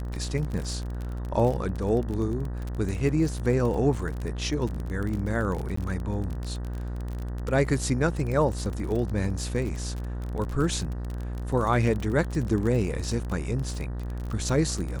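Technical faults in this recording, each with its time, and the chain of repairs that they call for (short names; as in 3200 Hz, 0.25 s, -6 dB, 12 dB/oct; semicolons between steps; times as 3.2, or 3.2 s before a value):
buzz 60 Hz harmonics 32 -32 dBFS
crackle 34/s -30 dBFS
5.76–5.77 gap 14 ms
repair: de-click; de-hum 60 Hz, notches 32; interpolate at 5.76, 14 ms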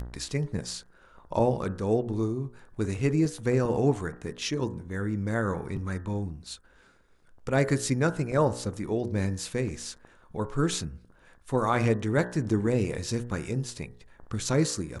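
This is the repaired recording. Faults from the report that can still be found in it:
none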